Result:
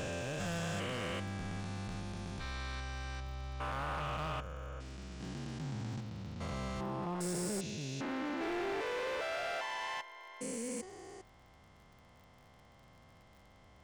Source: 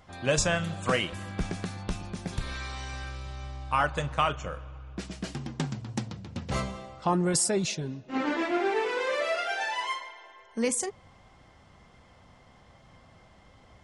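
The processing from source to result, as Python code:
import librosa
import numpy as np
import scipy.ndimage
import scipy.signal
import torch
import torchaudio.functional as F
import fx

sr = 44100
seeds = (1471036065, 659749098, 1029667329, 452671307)

y = fx.spec_steps(x, sr, hold_ms=400)
y = np.clip(y, -10.0 ** (-30.0 / 20.0), 10.0 ** (-30.0 / 20.0))
y = fx.dmg_crackle(y, sr, seeds[0], per_s=39.0, level_db=-49.0)
y = y * librosa.db_to_amplitude(-3.5)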